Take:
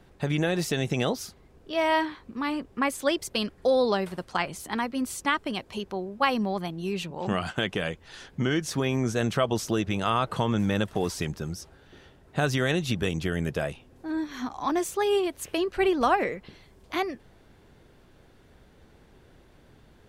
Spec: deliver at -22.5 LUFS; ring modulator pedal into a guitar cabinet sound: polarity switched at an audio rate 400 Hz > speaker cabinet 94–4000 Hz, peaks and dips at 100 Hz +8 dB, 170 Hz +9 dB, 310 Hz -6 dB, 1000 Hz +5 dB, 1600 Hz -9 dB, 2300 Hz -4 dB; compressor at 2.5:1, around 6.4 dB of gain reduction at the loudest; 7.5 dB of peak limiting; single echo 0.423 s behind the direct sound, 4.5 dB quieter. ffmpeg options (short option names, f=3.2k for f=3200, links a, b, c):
-af "acompressor=threshold=-28dB:ratio=2.5,alimiter=limit=-22.5dB:level=0:latency=1,aecho=1:1:423:0.596,aeval=exprs='val(0)*sgn(sin(2*PI*400*n/s))':c=same,highpass=94,equalizer=f=100:t=q:w=4:g=8,equalizer=f=170:t=q:w=4:g=9,equalizer=f=310:t=q:w=4:g=-6,equalizer=f=1k:t=q:w=4:g=5,equalizer=f=1.6k:t=q:w=4:g=-9,equalizer=f=2.3k:t=q:w=4:g=-4,lowpass=f=4k:w=0.5412,lowpass=f=4k:w=1.3066,volume=10dB"